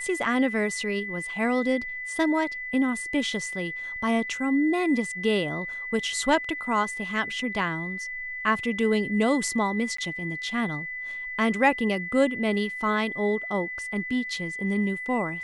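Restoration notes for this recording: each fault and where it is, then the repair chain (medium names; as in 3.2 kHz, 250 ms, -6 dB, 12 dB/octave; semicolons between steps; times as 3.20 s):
whine 2 kHz -32 dBFS
9.97–9.98 s: dropout 14 ms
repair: band-stop 2 kHz, Q 30; interpolate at 9.97 s, 14 ms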